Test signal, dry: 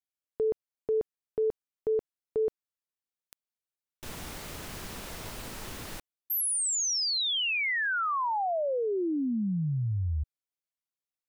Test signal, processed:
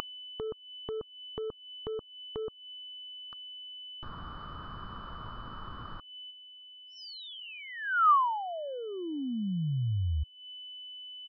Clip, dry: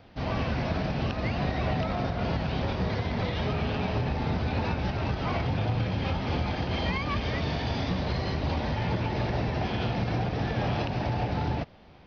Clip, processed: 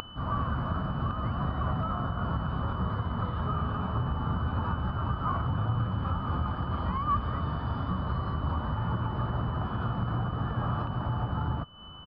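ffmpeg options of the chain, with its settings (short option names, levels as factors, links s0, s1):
-af "aeval=exprs='0.188*(cos(1*acos(clip(val(0)/0.188,-1,1)))-cos(1*PI/2))+0.00168*(cos(7*acos(clip(val(0)/0.188,-1,1)))-cos(7*PI/2))':c=same,aeval=exprs='val(0)+0.0251*sin(2*PI*3000*n/s)':c=same,firequalizer=gain_entry='entry(110,0);entry(410,-9);entry(780,-7);entry(1200,10);entry(2100,-22)':delay=0.05:min_phase=1,acompressor=mode=upward:threshold=0.0112:ratio=4:attack=8.5:knee=2.83:detection=peak,aresample=11025,aresample=44100"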